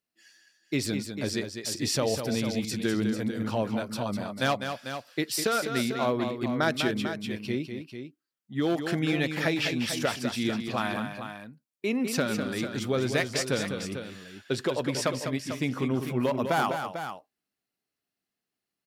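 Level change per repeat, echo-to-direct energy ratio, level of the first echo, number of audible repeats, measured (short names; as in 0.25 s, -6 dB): no steady repeat, -5.5 dB, -7.5 dB, 2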